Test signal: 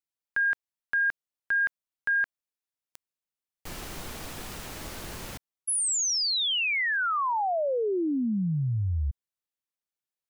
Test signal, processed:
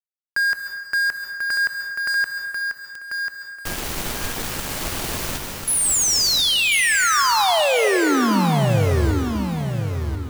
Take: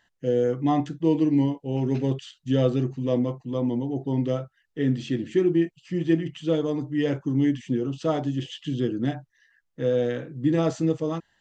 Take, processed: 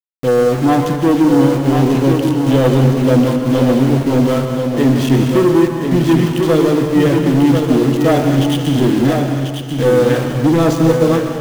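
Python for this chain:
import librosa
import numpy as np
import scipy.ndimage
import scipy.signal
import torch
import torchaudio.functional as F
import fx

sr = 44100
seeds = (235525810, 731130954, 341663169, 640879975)

y = fx.leveller(x, sr, passes=3)
y = np.where(np.abs(y) >= 10.0 ** (-26.0 / 20.0), y, 0.0)
y = fx.echo_feedback(y, sr, ms=1041, feedback_pct=24, wet_db=-5.5)
y = fx.rev_plate(y, sr, seeds[0], rt60_s=1.4, hf_ratio=0.85, predelay_ms=120, drr_db=5.5)
y = F.gain(torch.from_numpy(y), 2.5).numpy()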